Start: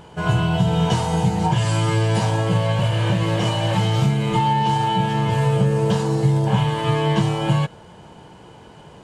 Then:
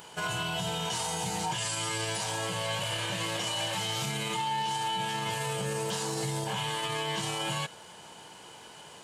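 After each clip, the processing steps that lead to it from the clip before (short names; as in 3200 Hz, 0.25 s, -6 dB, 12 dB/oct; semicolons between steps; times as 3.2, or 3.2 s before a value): tilt +4 dB/oct; limiter -20 dBFS, peak gain reduction 11 dB; gain -3.5 dB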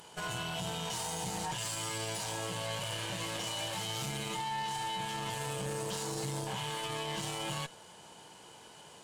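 bell 1900 Hz -3 dB 1.9 oct; tube stage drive 30 dB, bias 0.65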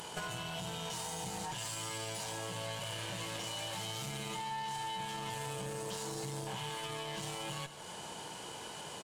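compressor 5:1, threshold -47 dBFS, peak gain reduction 12.5 dB; echo 0.152 s -13 dB; gain +8 dB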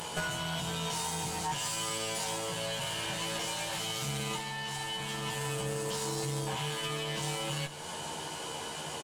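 doubler 13 ms -3 dB; gain +4.5 dB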